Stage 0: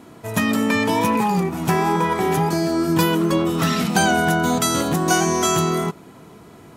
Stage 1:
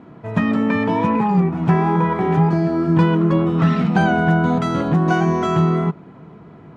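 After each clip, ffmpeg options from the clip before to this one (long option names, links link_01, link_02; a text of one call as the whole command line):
ffmpeg -i in.wav -af "lowpass=2000,equalizer=frequency=160:width=2.2:gain=7.5" out.wav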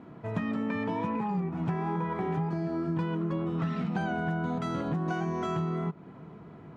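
ffmpeg -i in.wav -af "acompressor=threshold=-23dB:ratio=4,volume=-6dB" out.wav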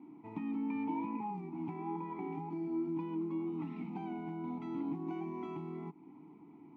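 ffmpeg -i in.wav -filter_complex "[0:a]acrusher=bits=8:mode=log:mix=0:aa=0.000001,asplit=3[link_01][link_02][link_03];[link_01]bandpass=frequency=300:width_type=q:width=8,volume=0dB[link_04];[link_02]bandpass=frequency=870:width_type=q:width=8,volume=-6dB[link_05];[link_03]bandpass=frequency=2240:width_type=q:width=8,volume=-9dB[link_06];[link_04][link_05][link_06]amix=inputs=3:normalize=0,volume=3.5dB" out.wav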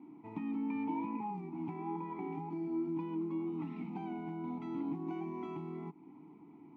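ffmpeg -i in.wav -af anull out.wav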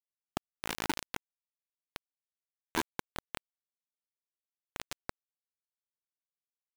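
ffmpeg -i in.wav -af "acrusher=bits=4:mix=0:aa=0.000001,volume=5dB" out.wav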